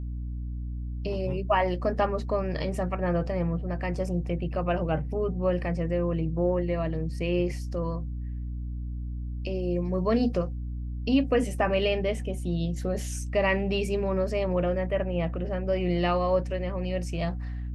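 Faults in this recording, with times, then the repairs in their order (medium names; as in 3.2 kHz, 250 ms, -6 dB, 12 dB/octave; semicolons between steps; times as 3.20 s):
hum 60 Hz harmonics 5 -33 dBFS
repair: de-hum 60 Hz, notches 5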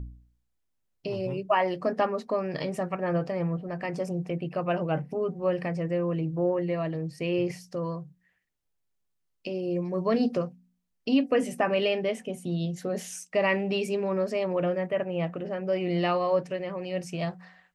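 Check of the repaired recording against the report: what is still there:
nothing left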